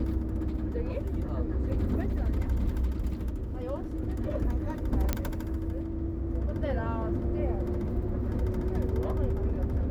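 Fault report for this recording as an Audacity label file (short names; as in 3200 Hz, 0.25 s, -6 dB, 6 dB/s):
5.130000	5.130000	pop -12 dBFS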